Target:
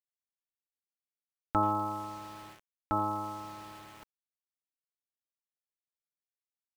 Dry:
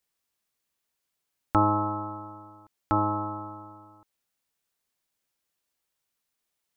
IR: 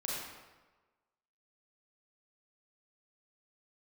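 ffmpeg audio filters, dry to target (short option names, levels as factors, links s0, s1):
-filter_complex "[0:a]bandreject=f=1100:w=22,aecho=1:1:4.5:0.32,areverse,acompressor=mode=upward:threshold=0.02:ratio=2.5,areverse,asplit=2[s0][s1];[s1]adelay=80,highpass=300,lowpass=3400,asoftclip=type=hard:threshold=0.141,volume=0.178[s2];[s0][s2]amix=inputs=2:normalize=0,aeval=exprs='val(0)*gte(abs(val(0)),0.00944)':c=same,volume=0.501"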